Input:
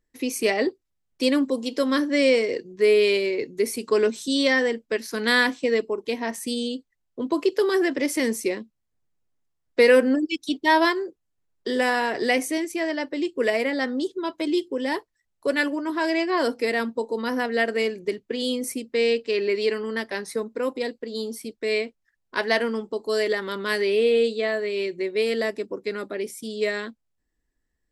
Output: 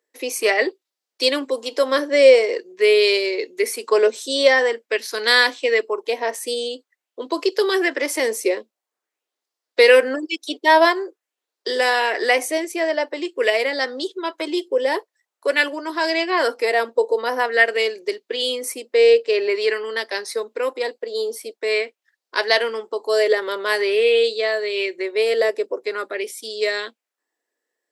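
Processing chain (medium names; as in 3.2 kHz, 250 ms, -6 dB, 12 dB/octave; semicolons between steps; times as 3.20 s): high-pass 380 Hz 24 dB/octave; sweeping bell 0.47 Hz 490–4900 Hz +7 dB; trim +4 dB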